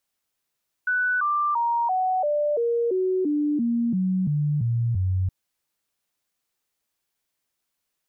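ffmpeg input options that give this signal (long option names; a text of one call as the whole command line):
ffmpeg -f lavfi -i "aevalsrc='0.1*clip(min(mod(t,0.34),0.34-mod(t,0.34))/0.005,0,1)*sin(2*PI*1490*pow(2,-floor(t/0.34)/3)*mod(t,0.34))':duration=4.42:sample_rate=44100" out.wav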